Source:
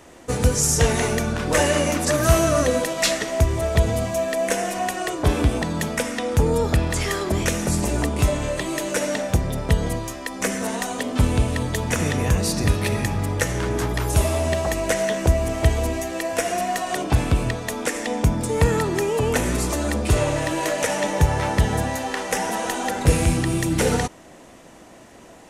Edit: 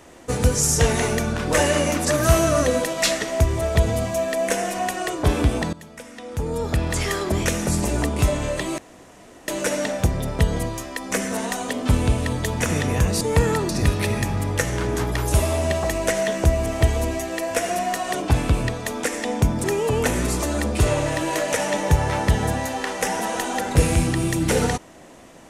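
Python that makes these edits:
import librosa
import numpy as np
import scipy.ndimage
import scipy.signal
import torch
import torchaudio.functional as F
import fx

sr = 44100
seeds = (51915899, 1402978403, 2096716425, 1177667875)

y = fx.edit(x, sr, fx.fade_in_from(start_s=5.73, length_s=1.22, curve='qua', floor_db=-17.5),
    fx.insert_room_tone(at_s=8.78, length_s=0.7),
    fx.move(start_s=18.46, length_s=0.48, to_s=12.51), tone=tone)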